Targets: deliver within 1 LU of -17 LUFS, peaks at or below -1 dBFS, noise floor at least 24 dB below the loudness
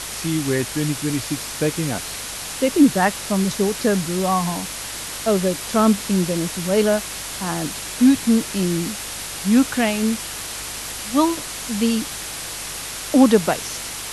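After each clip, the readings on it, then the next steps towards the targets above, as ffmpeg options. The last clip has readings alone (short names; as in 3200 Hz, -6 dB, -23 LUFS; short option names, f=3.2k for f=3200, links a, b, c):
hum 50 Hz; harmonics up to 150 Hz; hum level -44 dBFS; noise floor -31 dBFS; noise floor target -45 dBFS; loudness -21.0 LUFS; peak -3.0 dBFS; loudness target -17.0 LUFS
-> -af "bandreject=f=50:t=h:w=4,bandreject=f=100:t=h:w=4,bandreject=f=150:t=h:w=4"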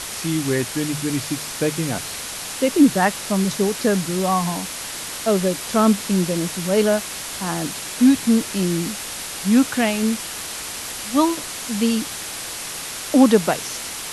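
hum none; noise floor -31 dBFS; noise floor target -45 dBFS
-> -af "afftdn=nr=14:nf=-31"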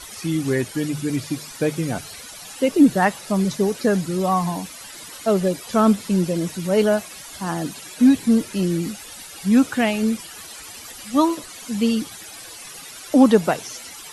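noise floor -39 dBFS; noise floor target -45 dBFS
-> -af "afftdn=nr=6:nf=-39"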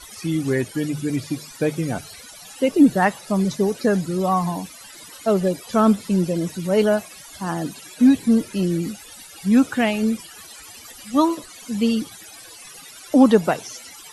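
noise floor -42 dBFS; noise floor target -45 dBFS
-> -af "afftdn=nr=6:nf=-42"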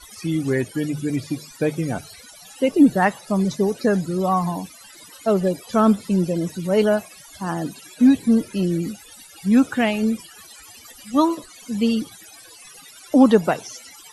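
noise floor -45 dBFS; loudness -21.0 LUFS; peak -3.0 dBFS; loudness target -17.0 LUFS
-> -af "volume=4dB,alimiter=limit=-1dB:level=0:latency=1"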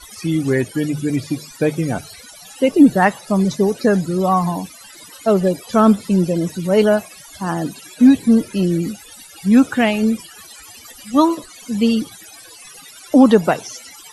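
loudness -17.0 LUFS; peak -1.0 dBFS; noise floor -41 dBFS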